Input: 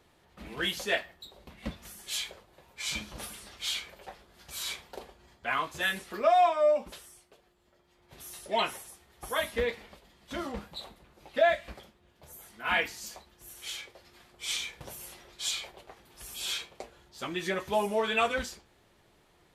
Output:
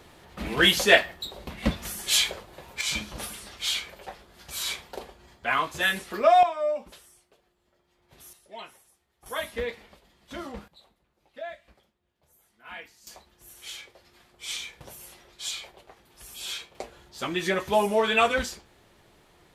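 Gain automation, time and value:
+12 dB
from 2.81 s +5 dB
from 6.43 s -3 dB
from 8.33 s -13.5 dB
from 9.26 s -1.5 dB
from 10.68 s -14 dB
from 13.07 s -1 dB
from 16.75 s +5.5 dB

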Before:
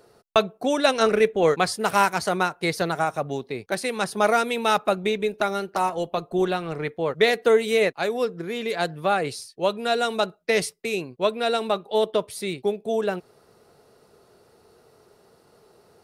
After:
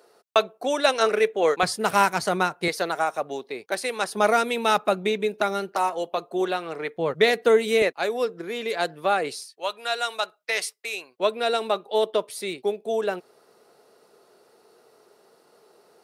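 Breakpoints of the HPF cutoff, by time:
380 Hz
from 1.63 s 100 Hz
from 2.68 s 360 Hz
from 4.15 s 160 Hz
from 5.72 s 340 Hz
from 6.96 s 97 Hz
from 7.82 s 280 Hz
from 9.5 s 850 Hz
from 11.2 s 290 Hz

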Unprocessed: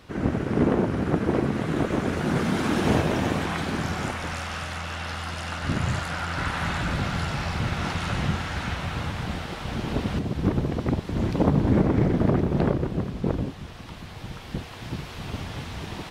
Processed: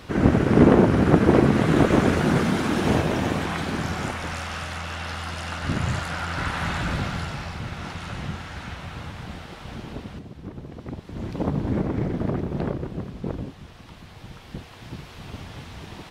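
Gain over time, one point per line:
2.02 s +7 dB
2.67 s +0.5 dB
6.95 s +0.5 dB
7.6 s -6 dB
9.74 s -6 dB
10.47 s -14.5 dB
11.47 s -4.5 dB

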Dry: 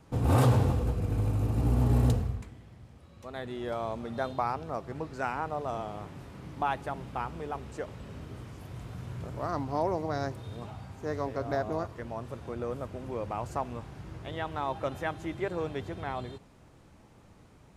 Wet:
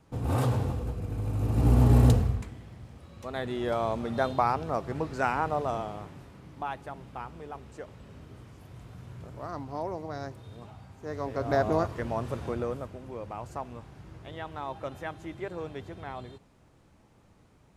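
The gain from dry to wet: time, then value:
1.21 s -4 dB
1.69 s +5 dB
5.57 s +5 dB
6.43 s -5 dB
11 s -5 dB
11.64 s +6.5 dB
12.45 s +6.5 dB
13.01 s -4 dB

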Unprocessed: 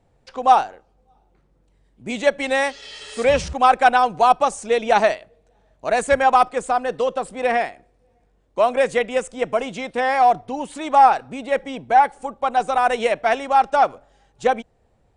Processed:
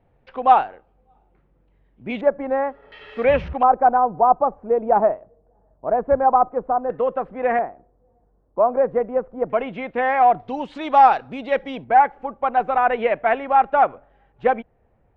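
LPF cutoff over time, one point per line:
LPF 24 dB/oct
2900 Hz
from 2.21 s 1300 Hz
from 2.92 s 2500 Hz
from 3.63 s 1100 Hz
from 6.9 s 1900 Hz
from 7.59 s 1200 Hz
from 9.5 s 2500 Hz
from 10.4 s 4200 Hz
from 11.84 s 2400 Hz

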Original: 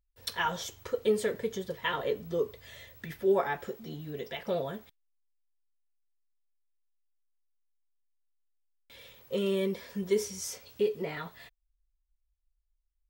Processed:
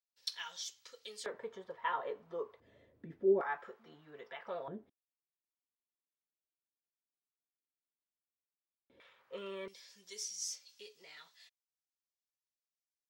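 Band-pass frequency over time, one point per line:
band-pass, Q 1.9
4900 Hz
from 1.26 s 1000 Hz
from 2.6 s 300 Hz
from 3.41 s 1200 Hz
from 4.68 s 300 Hz
from 9 s 1300 Hz
from 9.68 s 5500 Hz

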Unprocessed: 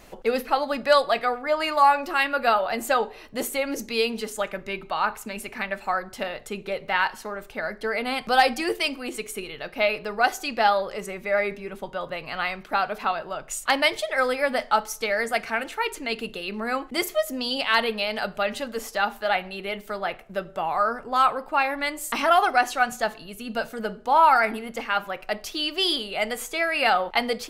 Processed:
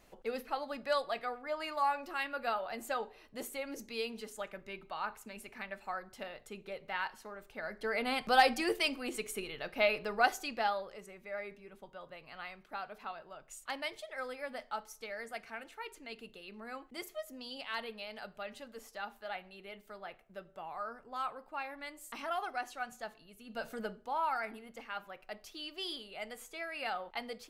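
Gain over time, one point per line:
7.45 s -14 dB
8.01 s -6.5 dB
10.21 s -6.5 dB
11.07 s -18 dB
23.45 s -18 dB
23.73 s -7.5 dB
24.16 s -17 dB

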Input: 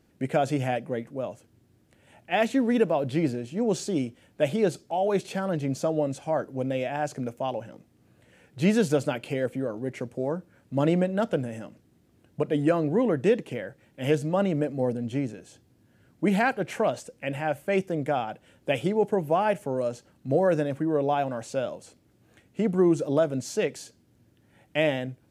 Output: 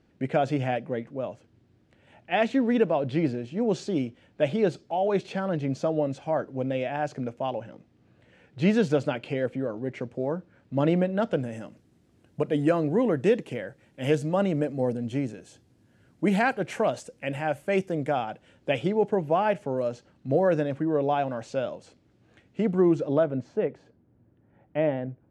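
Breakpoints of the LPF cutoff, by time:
11.19 s 4500 Hz
11.62 s 10000 Hz
17.86 s 10000 Hz
18.89 s 5100 Hz
22.71 s 5100 Hz
23.16 s 2900 Hz
23.57 s 1200 Hz

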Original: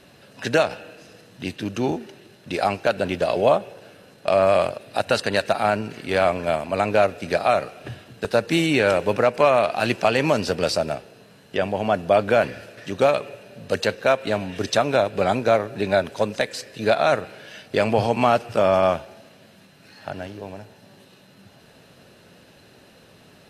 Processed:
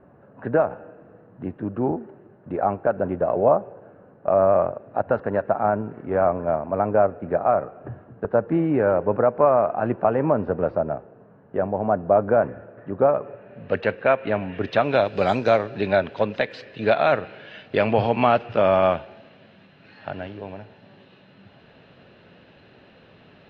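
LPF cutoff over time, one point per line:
LPF 24 dB/oct
13.17 s 1300 Hz
13.7 s 2500 Hz
14.61 s 2500 Hz
15.31 s 6200 Hz
15.99 s 3400 Hz

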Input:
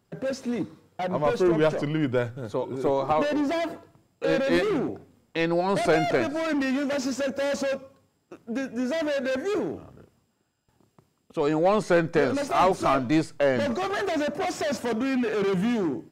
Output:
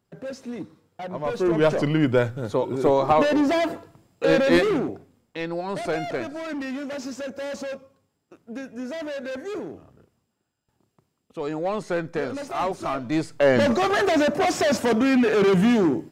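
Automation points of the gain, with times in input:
1.19 s -5 dB
1.79 s +5 dB
4.54 s +5 dB
5.39 s -5 dB
12.99 s -5 dB
13.57 s +6.5 dB

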